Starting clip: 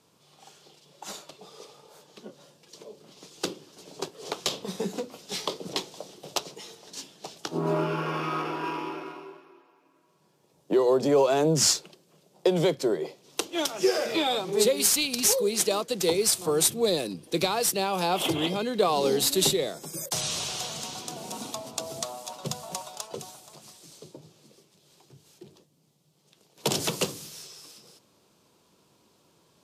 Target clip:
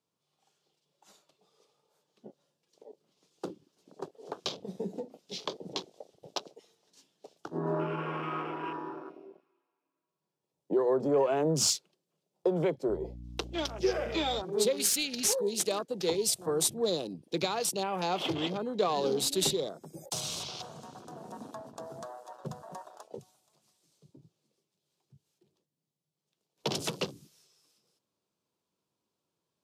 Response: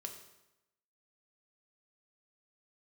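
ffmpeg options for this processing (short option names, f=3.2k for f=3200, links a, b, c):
-filter_complex "[0:a]afwtdn=0.0158,asettb=1/sr,asplit=3[a][b][c];[a]atrim=end=12.894[d];[b]atrim=start=12.89:end=14.42,asetpts=PTS-STARTPTS,afade=t=in:d=0.004:c=qsin,afade=t=out:st=1.526:d=0.004:c=qsin,aeval=exprs='val(0)+0.0126*(sin(2*PI*60*n/s)+sin(2*PI*2*60*n/s)/2+sin(2*PI*3*60*n/s)/3+sin(2*PI*4*60*n/s)/4+sin(2*PI*5*60*n/s)/5)':c=same[e];[c]atrim=start=14.416[f];[d][e]acrossfade=d=0.004:c1=hsin:c2=qsin[g];[g][f]acrossfade=d=0.004:c1=qsin:c2=hsin,volume=-5dB"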